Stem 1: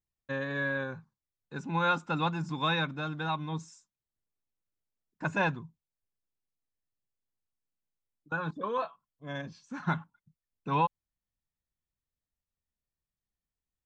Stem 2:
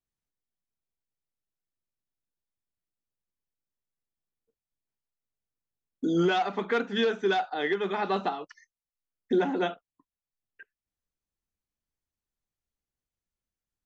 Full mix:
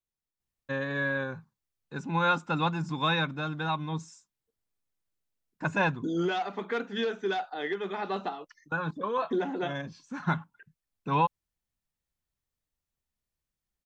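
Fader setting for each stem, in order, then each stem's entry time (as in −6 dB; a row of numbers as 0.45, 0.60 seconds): +2.0, −4.5 decibels; 0.40, 0.00 seconds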